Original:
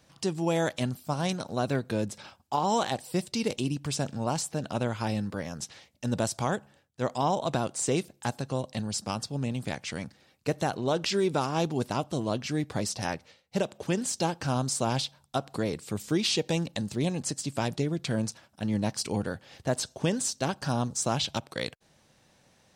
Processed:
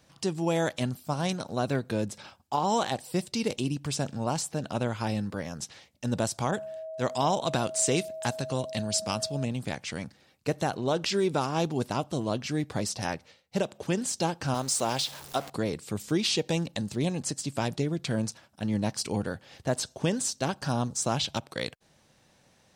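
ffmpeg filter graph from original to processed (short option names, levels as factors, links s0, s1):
-filter_complex "[0:a]asettb=1/sr,asplit=3[s0][s1][s2];[s0]atrim=end=6.514[s3];[s1]atrim=start=6.51:end=9.45,asetpts=PTS-STARTPTS,afade=t=in:d=0.004:c=qsin,afade=t=out:st=2.936:d=0.004:c=qsin,aeval=exprs='val(0)+0.0158*sin(2*PI*640*n/s)':c=same,adynamicequalizer=threshold=0.00794:dfrequency=1500:dqfactor=0.7:tfrequency=1500:tqfactor=0.7:attack=5:release=100:ratio=0.375:range=2.5:mode=boostabove:tftype=highshelf[s4];[s2]atrim=start=9.446[s5];[s3][s4]acrossfade=d=0.004:c1=hsin:c2=qsin[s6];[s6][s5]acrossfade=d=0.004:c1=qsin:c2=hsin,asettb=1/sr,asplit=3[s7][s8][s9];[s7]atrim=end=14.544[s10];[s8]atrim=start=14.54:end=15.5,asetpts=PTS-STARTPTS,afade=t=in:d=0.004:c=qsin,afade=t=out:st=0.956:d=0.004:c=qsin,aeval=exprs='val(0)+0.5*0.0133*sgn(val(0))':c=same,bass=f=250:g=-9,treble=f=4000:g=2,bandreject=f=50:t=h:w=6,bandreject=f=100:t=h:w=6,bandreject=f=150:t=h:w=6[s11];[s9]atrim=start=15.496[s12];[s10][s11]acrossfade=d=0.004:c1=hsin:c2=qsin[s13];[s13][s12]acrossfade=d=0.004:c1=qsin:c2=hsin"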